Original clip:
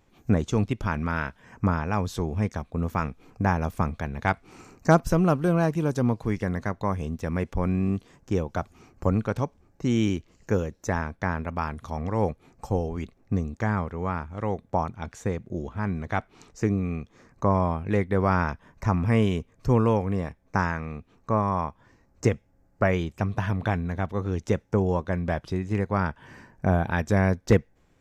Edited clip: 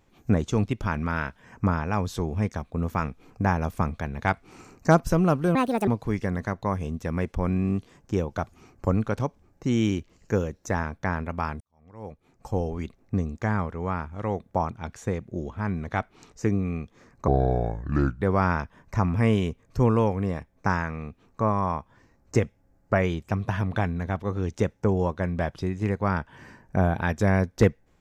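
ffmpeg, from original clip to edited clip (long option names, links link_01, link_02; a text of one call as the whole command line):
ffmpeg -i in.wav -filter_complex "[0:a]asplit=6[link_01][link_02][link_03][link_04][link_05][link_06];[link_01]atrim=end=5.554[link_07];[link_02]atrim=start=5.55:end=6.06,asetpts=PTS-STARTPTS,asetrate=69237,aresample=44100,atrim=end_sample=14325,asetpts=PTS-STARTPTS[link_08];[link_03]atrim=start=6.056:end=11.79,asetpts=PTS-STARTPTS,afade=type=out:start_time=5.73:duration=0.004:curve=hsin[link_09];[link_04]atrim=start=11.79:end=17.464,asetpts=PTS-STARTPTS,afade=type=in:duration=1.02:curve=qua[link_10];[link_05]atrim=start=17.46:end=18.11,asetpts=PTS-STARTPTS,asetrate=30429,aresample=44100,atrim=end_sample=41543,asetpts=PTS-STARTPTS[link_11];[link_06]atrim=start=18.106[link_12];[link_07][link_08]acrossfade=duration=0.004:curve1=hsin:curve2=hsin[link_13];[link_09][link_10]concat=n=2:v=0:a=1[link_14];[link_13][link_14]acrossfade=duration=0.004:curve1=hsin:curve2=hsin[link_15];[link_15][link_11]acrossfade=duration=0.004:curve1=hsin:curve2=hsin[link_16];[link_16][link_12]acrossfade=duration=0.004:curve1=hsin:curve2=hsin" out.wav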